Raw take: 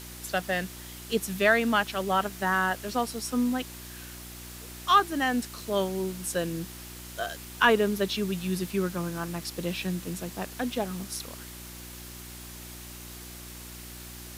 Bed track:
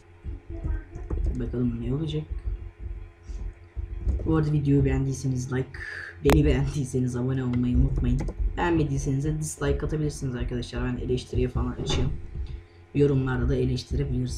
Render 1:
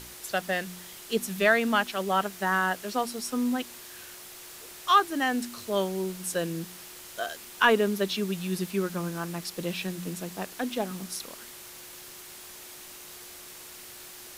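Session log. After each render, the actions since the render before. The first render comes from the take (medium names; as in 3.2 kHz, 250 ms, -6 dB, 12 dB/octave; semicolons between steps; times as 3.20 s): de-hum 60 Hz, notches 5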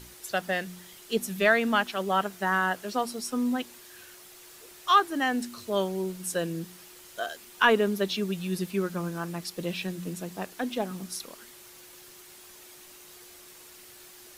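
noise reduction 6 dB, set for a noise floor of -46 dBFS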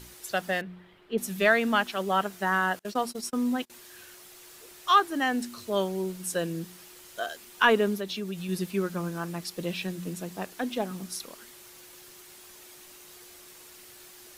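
0.61–1.18 s: distance through air 490 m; 2.79–3.70 s: gate -38 dBFS, range -29 dB; 7.95–8.49 s: compression 2:1, threshold -33 dBFS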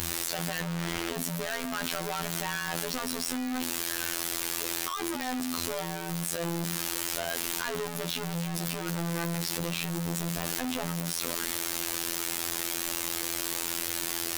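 one-bit comparator; robot voice 84.6 Hz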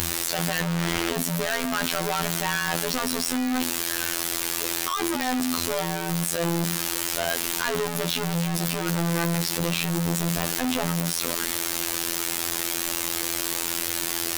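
trim +7 dB; peak limiter -2 dBFS, peak gain reduction 2.5 dB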